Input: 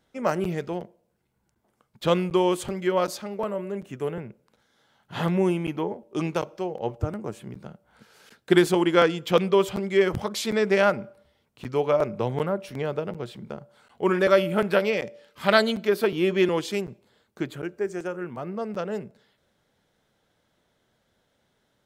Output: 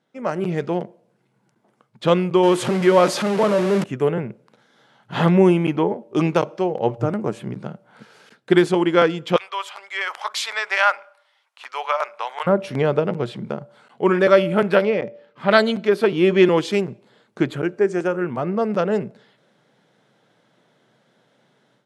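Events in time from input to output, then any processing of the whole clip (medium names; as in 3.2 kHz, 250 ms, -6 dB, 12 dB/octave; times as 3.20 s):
2.43–3.84 s: jump at every zero crossing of -27.5 dBFS
9.36–12.47 s: high-pass 880 Hz 24 dB/octave
14.85–15.51 s: low-pass 1.4 kHz 6 dB/octave
whole clip: FFT band-pass 110–12000 Hz; treble shelf 5.5 kHz -10 dB; level rider gain up to 11 dB; trim -1 dB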